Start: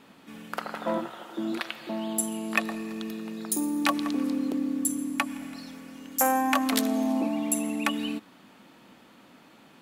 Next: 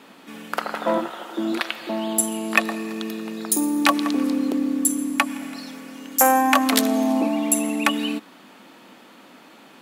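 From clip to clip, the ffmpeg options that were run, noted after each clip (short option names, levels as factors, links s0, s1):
-af "highpass=230,volume=2.37"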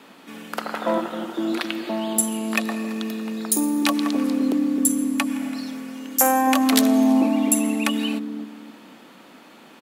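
-filter_complex "[0:a]acrossover=split=510|2900[s0][s1][s2];[s0]aecho=1:1:260|520|780|1040:0.631|0.196|0.0606|0.0188[s3];[s1]alimiter=limit=0.178:level=0:latency=1:release=147[s4];[s3][s4][s2]amix=inputs=3:normalize=0"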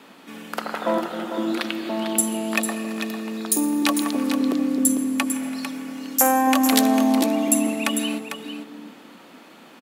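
-af "aecho=1:1:449:0.376"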